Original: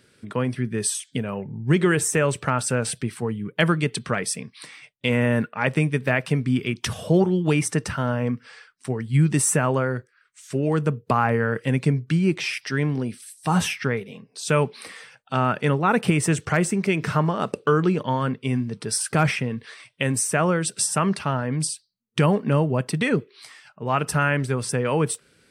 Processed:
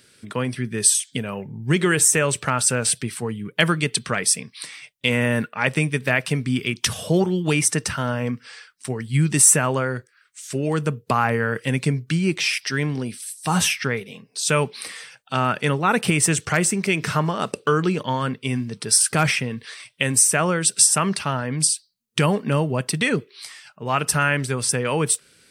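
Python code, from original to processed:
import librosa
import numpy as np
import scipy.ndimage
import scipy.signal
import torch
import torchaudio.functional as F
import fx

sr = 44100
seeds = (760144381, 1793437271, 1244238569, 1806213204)

y = fx.high_shelf(x, sr, hz=2300.0, db=10.5)
y = y * librosa.db_to_amplitude(-1.0)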